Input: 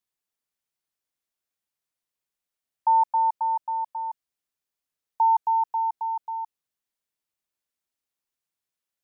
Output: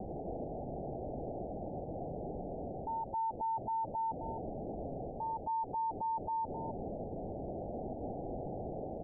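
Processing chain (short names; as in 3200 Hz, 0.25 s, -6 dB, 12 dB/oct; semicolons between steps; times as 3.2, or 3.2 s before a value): zero-crossing step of -29.5 dBFS; steep low-pass 780 Hz 96 dB/oct; in parallel at +1.5 dB: vocal rider 0.5 s; on the sum: limiter -35.5 dBFS, peak gain reduction 9 dB; echo 0.261 s -6.5 dB; gain +2 dB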